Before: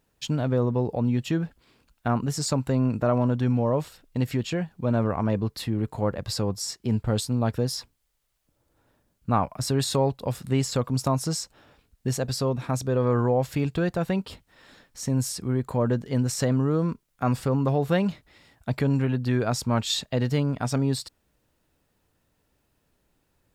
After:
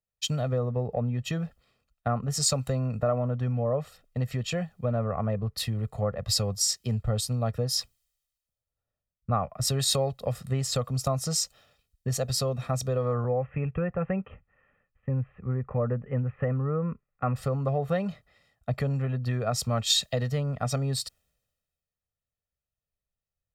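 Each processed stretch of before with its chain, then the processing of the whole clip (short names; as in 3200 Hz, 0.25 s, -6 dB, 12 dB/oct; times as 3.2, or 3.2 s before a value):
13.24–17.36 steep low-pass 2800 Hz 72 dB/oct + notch 670 Hz, Q 5.8
whole clip: comb 1.6 ms, depth 73%; compressor 4:1, threshold -25 dBFS; three-band expander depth 70%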